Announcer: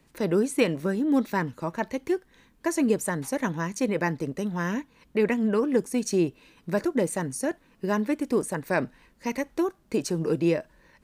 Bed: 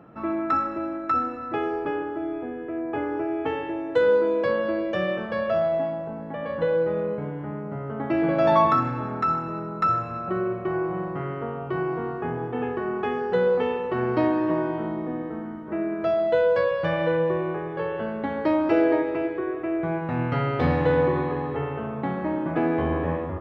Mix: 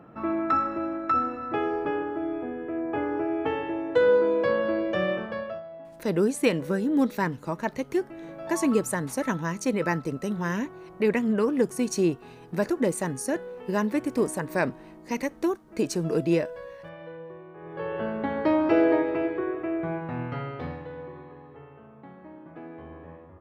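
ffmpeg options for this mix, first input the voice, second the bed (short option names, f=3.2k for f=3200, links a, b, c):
-filter_complex "[0:a]adelay=5850,volume=0dB[a];[1:a]volume=17.5dB,afade=t=out:st=5.11:d=0.51:silence=0.125893,afade=t=in:st=17.54:d=0.5:silence=0.125893,afade=t=out:st=19.38:d=1.49:silence=0.11885[b];[a][b]amix=inputs=2:normalize=0"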